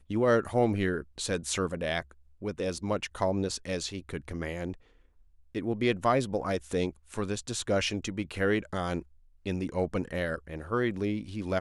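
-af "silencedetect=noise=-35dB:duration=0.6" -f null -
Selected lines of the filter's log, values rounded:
silence_start: 4.74
silence_end: 5.55 | silence_duration: 0.81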